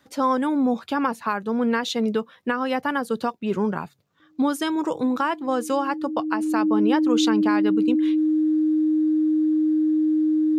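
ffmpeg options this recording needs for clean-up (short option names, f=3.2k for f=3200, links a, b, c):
-af "bandreject=f=310:w=30"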